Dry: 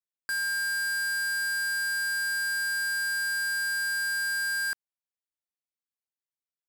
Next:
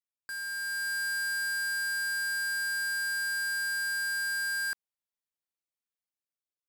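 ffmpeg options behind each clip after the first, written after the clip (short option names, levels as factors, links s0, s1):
-af "dynaudnorm=f=150:g=9:m=2,volume=0.376"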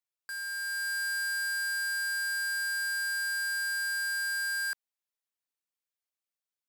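-af "highpass=f=500:p=1"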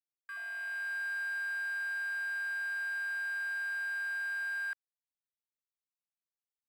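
-af "afwtdn=0.0126,volume=0.708"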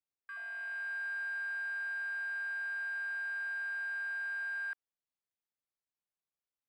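-af "lowpass=f=2200:p=1"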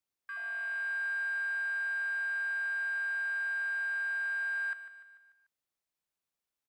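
-af "aecho=1:1:147|294|441|588|735:0.251|0.123|0.0603|0.0296|0.0145,volume=1.58"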